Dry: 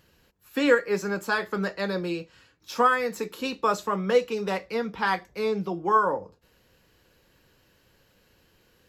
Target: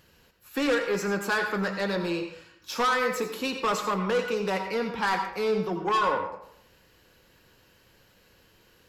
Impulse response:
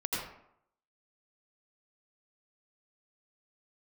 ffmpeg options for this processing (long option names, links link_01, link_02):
-filter_complex "[0:a]asoftclip=type=tanh:threshold=-23dB,asplit=2[link_01][link_02];[1:a]atrim=start_sample=2205,lowshelf=frequency=340:gain=-11.5[link_03];[link_02][link_03]afir=irnorm=-1:irlink=0,volume=-7dB[link_04];[link_01][link_04]amix=inputs=2:normalize=0"